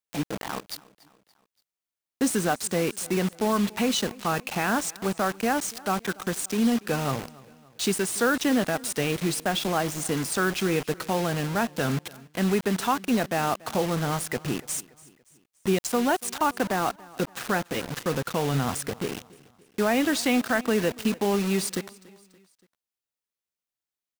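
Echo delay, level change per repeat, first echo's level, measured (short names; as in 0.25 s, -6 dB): 0.286 s, -6.0 dB, -22.0 dB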